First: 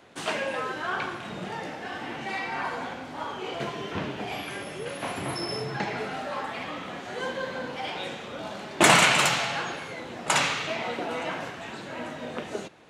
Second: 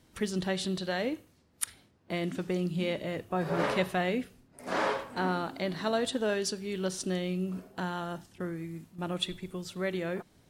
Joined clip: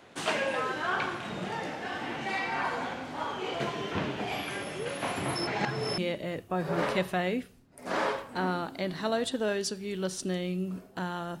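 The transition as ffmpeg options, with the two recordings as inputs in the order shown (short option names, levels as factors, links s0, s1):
-filter_complex "[0:a]apad=whole_dur=11.4,atrim=end=11.4,asplit=2[s0][s1];[s0]atrim=end=5.472[s2];[s1]atrim=start=5.468:end=5.982,asetpts=PTS-STARTPTS,areverse[s3];[1:a]atrim=start=2.788:end=8.21[s4];[s2][s3]acrossfade=d=0.004:c1=hsin:c2=hsin[s5];[s5][s4]acrossfade=d=0.004:c1=hsin:c2=hsin"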